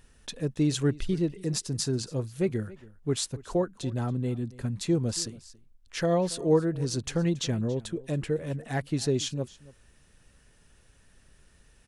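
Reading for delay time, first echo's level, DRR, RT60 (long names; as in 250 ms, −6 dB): 279 ms, −20.5 dB, no reverb audible, no reverb audible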